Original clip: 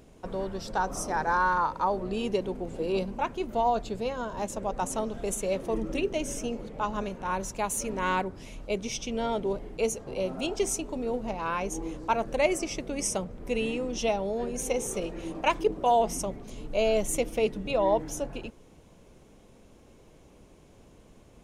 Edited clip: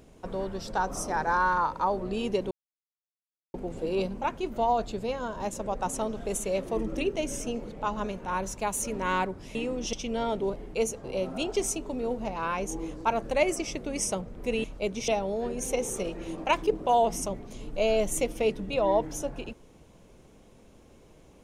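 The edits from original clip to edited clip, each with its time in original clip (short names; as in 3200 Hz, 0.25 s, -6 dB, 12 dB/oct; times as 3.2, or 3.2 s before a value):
2.51 insert silence 1.03 s
8.52–8.96 swap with 13.67–14.05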